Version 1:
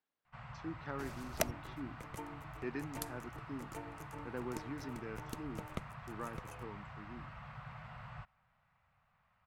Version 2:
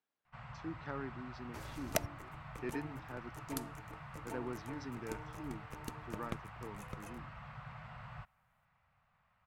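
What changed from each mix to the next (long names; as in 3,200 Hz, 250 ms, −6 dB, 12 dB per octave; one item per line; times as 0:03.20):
second sound: entry +0.55 s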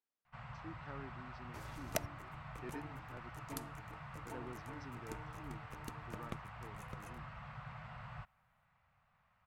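speech −7.5 dB
second sound −3.5 dB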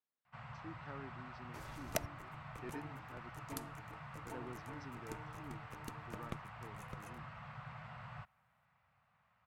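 first sound: add high-pass filter 83 Hz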